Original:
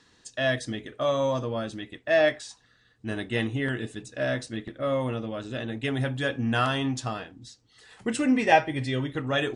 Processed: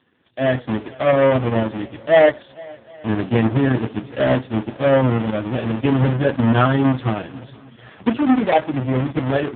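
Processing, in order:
each half-wave held at its own peak
dynamic equaliser 2,700 Hz, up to −4 dB, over −37 dBFS, Q 1.4
automatic gain control gain up to 11 dB
feedback echo with a long and a short gap by turns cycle 773 ms, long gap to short 1.5 to 1, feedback 36%, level −23.5 dB
level −2 dB
AMR narrowband 4.75 kbit/s 8,000 Hz

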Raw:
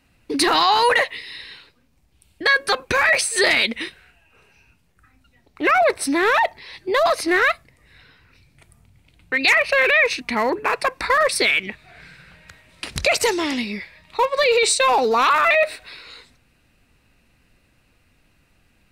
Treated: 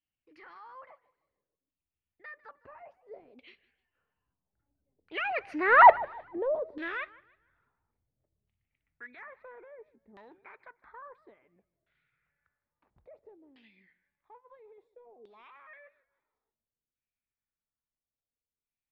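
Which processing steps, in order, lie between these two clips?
source passing by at 0:05.90, 30 m/s, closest 1.8 metres
auto-filter low-pass saw down 0.59 Hz 410–3,300 Hz
feedback echo with a swinging delay time 153 ms, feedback 32%, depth 181 cents, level −21 dB
level +2.5 dB

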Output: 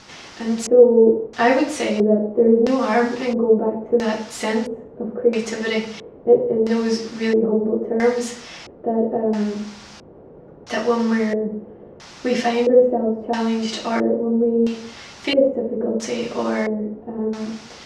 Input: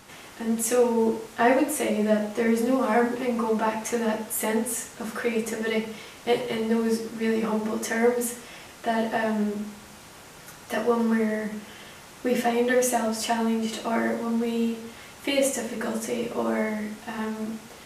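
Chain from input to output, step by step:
running median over 3 samples
auto-filter low-pass square 0.75 Hz 460–5,300 Hz
level +4 dB

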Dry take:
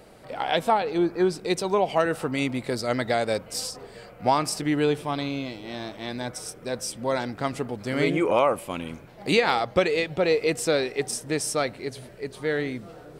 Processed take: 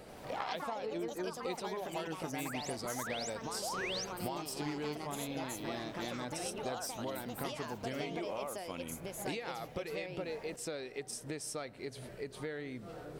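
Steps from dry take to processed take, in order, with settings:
downward compressor 10 to 1, threshold −36 dBFS, peak gain reduction 20.5 dB
sound drawn into the spectrogram rise, 0:03.62–0:04.05, 540–6,700 Hz −38 dBFS
delay with pitch and tempo change per echo 85 ms, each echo +4 semitones, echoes 2
level −2 dB

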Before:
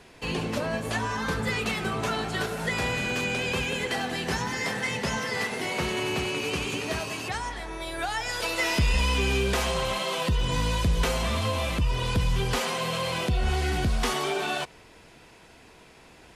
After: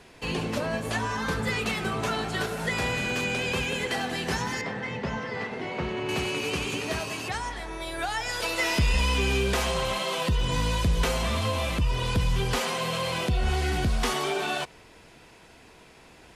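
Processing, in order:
0:04.61–0:06.09: head-to-tape spacing loss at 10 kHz 26 dB

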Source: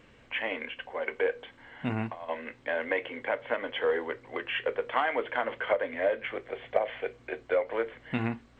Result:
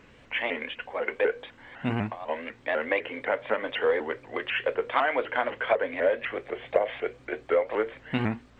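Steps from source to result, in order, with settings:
pitch modulation by a square or saw wave saw up 4 Hz, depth 160 cents
level +3 dB

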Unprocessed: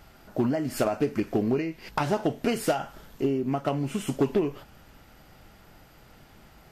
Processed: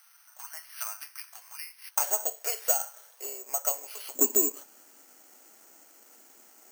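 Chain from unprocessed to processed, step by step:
sub-octave generator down 2 octaves, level +1 dB
Butterworth high-pass 1,000 Hz 36 dB per octave, from 0:01.95 510 Hz, from 0:04.14 260 Hz
bad sample-rate conversion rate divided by 6×, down filtered, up zero stuff
level −6.5 dB

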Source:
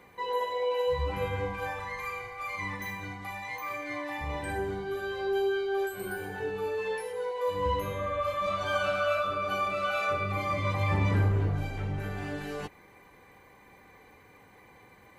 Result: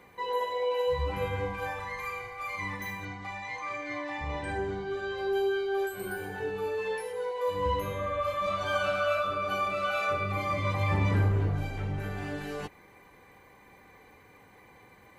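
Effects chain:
0:03.05–0:05.18: low-pass filter 7,500 Hz 24 dB per octave

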